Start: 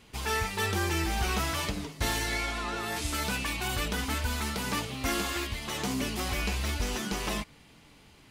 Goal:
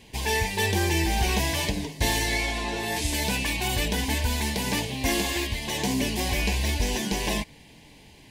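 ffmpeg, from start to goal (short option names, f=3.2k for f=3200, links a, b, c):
-af "asuperstop=centerf=1300:order=4:qfactor=2.2,volume=5.5dB"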